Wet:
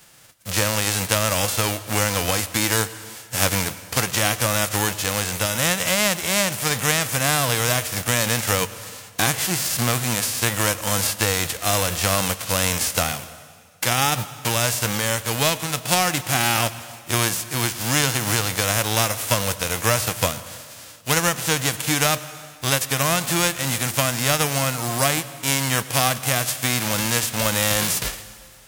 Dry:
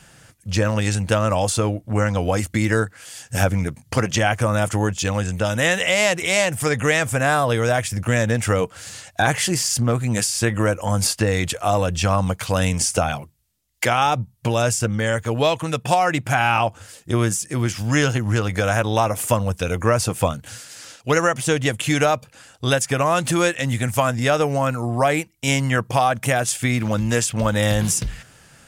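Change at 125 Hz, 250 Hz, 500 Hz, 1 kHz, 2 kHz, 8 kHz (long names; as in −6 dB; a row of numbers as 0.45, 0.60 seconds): −4.5, −4.5, −5.0, −3.0, −0.5, +4.5 decibels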